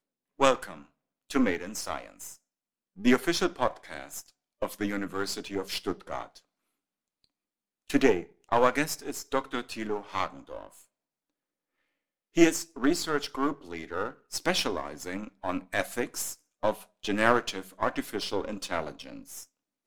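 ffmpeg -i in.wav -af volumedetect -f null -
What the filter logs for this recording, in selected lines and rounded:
mean_volume: -30.8 dB
max_volume: -5.0 dB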